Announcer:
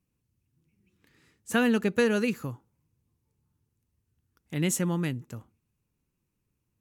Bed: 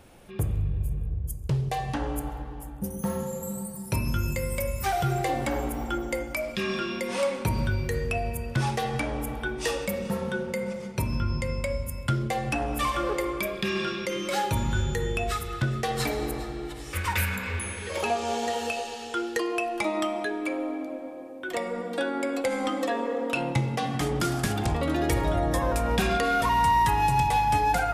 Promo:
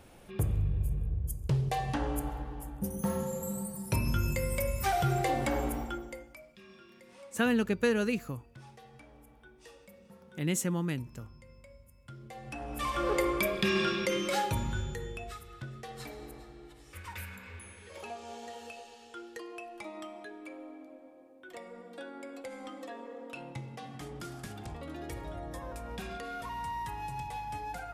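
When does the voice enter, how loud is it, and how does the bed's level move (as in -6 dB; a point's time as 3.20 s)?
5.85 s, -3.5 dB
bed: 5.74 s -2.5 dB
6.53 s -25.5 dB
11.99 s -25.5 dB
13.18 s 0 dB
14.12 s 0 dB
15.42 s -16 dB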